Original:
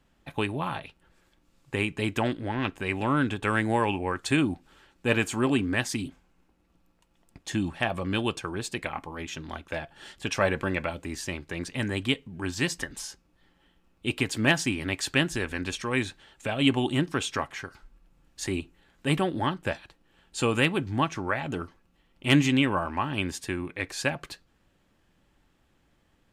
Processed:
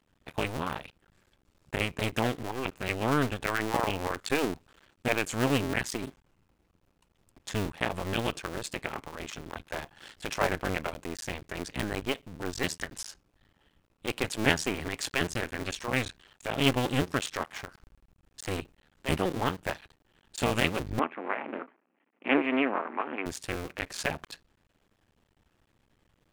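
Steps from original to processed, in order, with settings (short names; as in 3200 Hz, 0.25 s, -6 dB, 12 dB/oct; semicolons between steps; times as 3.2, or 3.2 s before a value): cycle switcher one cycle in 2, muted; 20.99–23.26 elliptic band-pass 240–2400 Hz, stop band 40 dB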